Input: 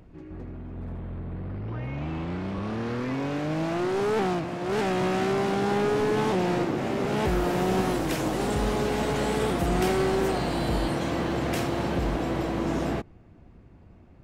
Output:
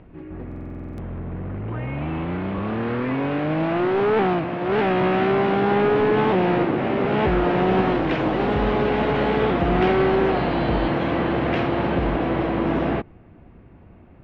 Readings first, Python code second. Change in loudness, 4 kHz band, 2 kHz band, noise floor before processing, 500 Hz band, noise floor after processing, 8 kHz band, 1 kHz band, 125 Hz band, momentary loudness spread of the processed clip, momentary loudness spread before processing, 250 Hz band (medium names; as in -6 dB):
+5.5 dB, +1.5 dB, +6.5 dB, -52 dBFS, +6.0 dB, -47 dBFS, under -20 dB, +6.5 dB, +4.5 dB, 13 LU, 11 LU, +5.5 dB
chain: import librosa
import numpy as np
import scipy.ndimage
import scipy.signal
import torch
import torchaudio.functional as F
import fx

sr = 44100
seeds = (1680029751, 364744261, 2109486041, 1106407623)

y = scipy.signal.sosfilt(scipy.signal.butter(4, 3100.0, 'lowpass', fs=sr, output='sos'), x)
y = fx.low_shelf(y, sr, hz=150.0, db=-4.0)
y = fx.buffer_glitch(y, sr, at_s=(0.47,), block=2048, repeats=10)
y = y * librosa.db_to_amplitude(6.5)